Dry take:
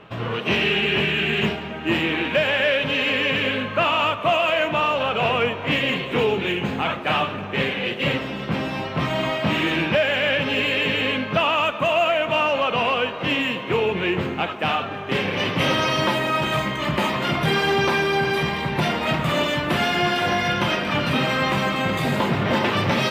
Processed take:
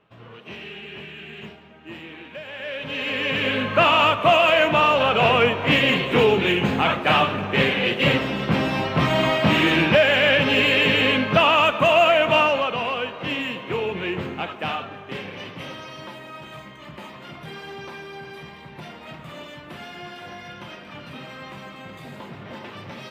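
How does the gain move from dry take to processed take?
2.44 s -17 dB
2.95 s -6.5 dB
3.78 s +3.5 dB
12.38 s +3.5 dB
12.78 s -4.5 dB
14.68 s -4.5 dB
15.84 s -17 dB

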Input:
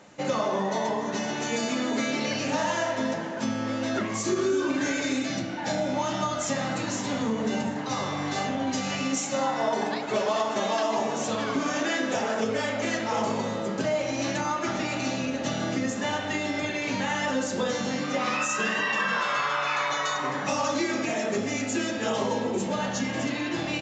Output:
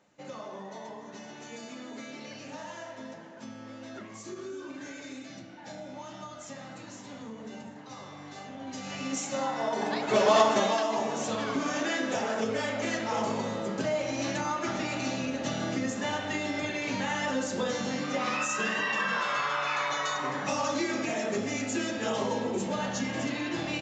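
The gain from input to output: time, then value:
8.45 s -15 dB
9.19 s -4.5 dB
9.72 s -4.5 dB
10.4 s +6 dB
10.85 s -3 dB

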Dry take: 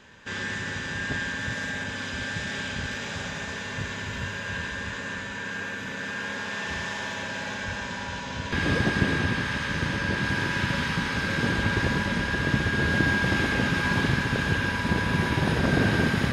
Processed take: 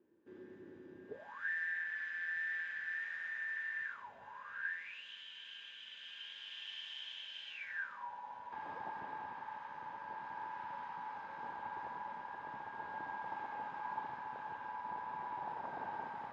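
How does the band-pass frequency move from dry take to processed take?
band-pass, Q 13
1.05 s 340 Hz
1.49 s 1800 Hz
3.85 s 1800 Hz
4.15 s 700 Hz
5.06 s 3100 Hz
7.48 s 3100 Hz
8.1 s 880 Hz

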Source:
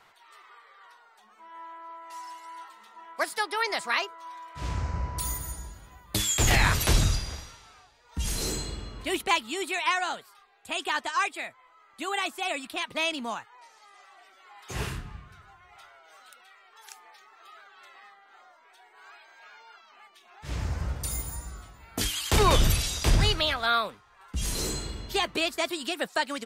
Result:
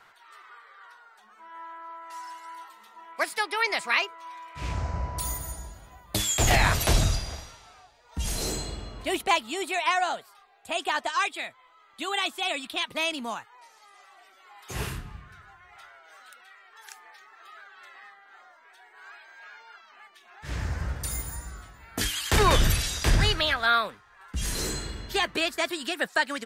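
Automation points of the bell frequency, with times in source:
bell +7 dB 0.5 oct
1500 Hz
from 2.55 s 13000 Hz
from 3.12 s 2400 Hz
from 4.72 s 680 Hz
from 11.1 s 3500 Hz
from 12.87 s 12000 Hz
from 15.21 s 1700 Hz

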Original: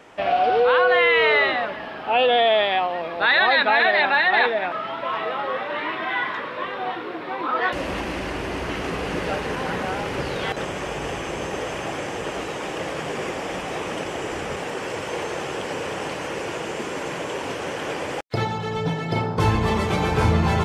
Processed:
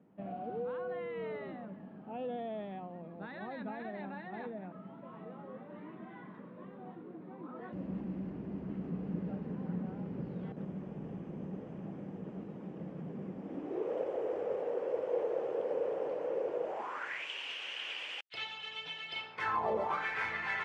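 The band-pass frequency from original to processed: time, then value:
band-pass, Q 4.4
13.37 s 190 Hz
13.94 s 500 Hz
16.61 s 500 Hz
17.29 s 2900 Hz
19.31 s 2900 Hz
19.75 s 500 Hz
20.06 s 1900 Hz

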